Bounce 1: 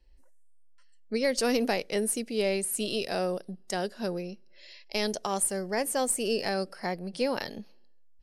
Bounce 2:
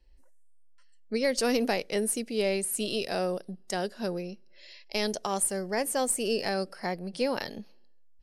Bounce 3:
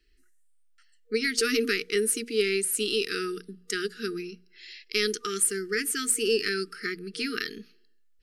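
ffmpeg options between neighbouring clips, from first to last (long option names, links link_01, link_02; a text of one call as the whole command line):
ffmpeg -i in.wav -af anull out.wav
ffmpeg -i in.wav -af "bass=frequency=250:gain=-14,treble=frequency=4000:gain=-3,bandreject=frequency=60:width_type=h:width=6,bandreject=frequency=120:width_type=h:width=6,bandreject=frequency=180:width_type=h:width=6,bandreject=frequency=240:width_type=h:width=6,afftfilt=real='re*(1-between(b*sr/4096,470,1200))':imag='im*(1-between(b*sr/4096,470,1200))':win_size=4096:overlap=0.75,volume=6.5dB" out.wav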